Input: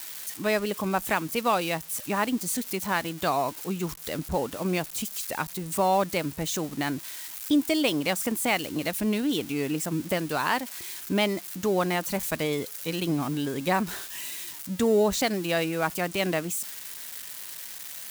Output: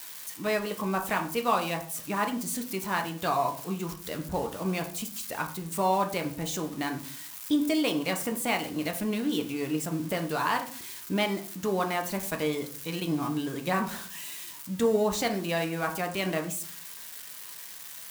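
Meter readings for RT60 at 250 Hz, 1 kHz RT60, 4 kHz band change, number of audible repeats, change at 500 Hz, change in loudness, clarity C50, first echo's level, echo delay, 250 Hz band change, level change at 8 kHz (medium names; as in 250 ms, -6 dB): 0.65 s, 0.40 s, -3.5 dB, no echo, -2.5 dB, -2.5 dB, 11.0 dB, no echo, no echo, -2.0 dB, -3.5 dB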